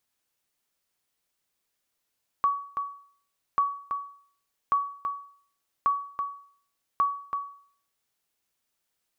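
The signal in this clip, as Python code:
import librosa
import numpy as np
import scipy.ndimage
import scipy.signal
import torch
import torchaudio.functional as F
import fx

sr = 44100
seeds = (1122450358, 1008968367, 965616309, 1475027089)

y = fx.sonar_ping(sr, hz=1130.0, decay_s=0.53, every_s=1.14, pings=5, echo_s=0.33, echo_db=-7.0, level_db=-16.5)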